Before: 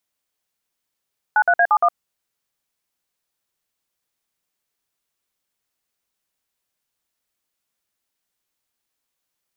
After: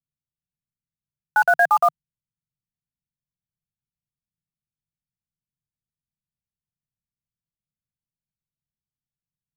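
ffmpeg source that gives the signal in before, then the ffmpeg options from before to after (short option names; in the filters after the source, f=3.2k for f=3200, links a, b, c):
-f lavfi -i "aevalsrc='0.188*clip(min(mod(t,0.116),0.062-mod(t,0.116))/0.002,0,1)*(eq(floor(t/0.116),0)*(sin(2*PI*852*mod(t,0.116))+sin(2*PI*1477*mod(t,0.116)))+eq(floor(t/0.116),1)*(sin(2*PI*697*mod(t,0.116))+sin(2*PI*1477*mod(t,0.116)))+eq(floor(t/0.116),2)*(sin(2*PI*697*mod(t,0.116))+sin(2*PI*1633*mod(t,0.116)))+eq(floor(t/0.116),3)*(sin(2*PI*852*mod(t,0.116))+sin(2*PI*1209*mod(t,0.116)))+eq(floor(t/0.116),4)*(sin(2*PI*697*mod(t,0.116))+sin(2*PI*1209*mod(t,0.116))))':d=0.58:s=44100"
-filter_complex "[0:a]equalizer=f=150:w=2.1:g=9.5,bandreject=f=920:w=21,acrossover=split=200[a][b];[b]acrusher=bits=5:mix=0:aa=0.000001[c];[a][c]amix=inputs=2:normalize=0"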